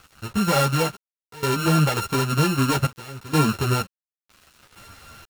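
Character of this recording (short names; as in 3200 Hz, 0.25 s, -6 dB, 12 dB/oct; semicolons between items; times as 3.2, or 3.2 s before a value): a buzz of ramps at a fixed pitch in blocks of 32 samples; random-step tremolo 2.1 Hz, depth 90%; a quantiser's noise floor 8-bit, dither none; a shimmering, thickened sound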